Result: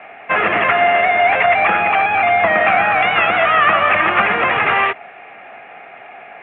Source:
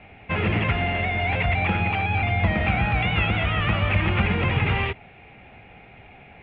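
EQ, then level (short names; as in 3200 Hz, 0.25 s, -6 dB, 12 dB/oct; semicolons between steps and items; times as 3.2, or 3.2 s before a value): speaker cabinet 390–3100 Hz, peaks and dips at 680 Hz +9 dB, 1200 Hz +10 dB, 1700 Hz +8 dB; +7.5 dB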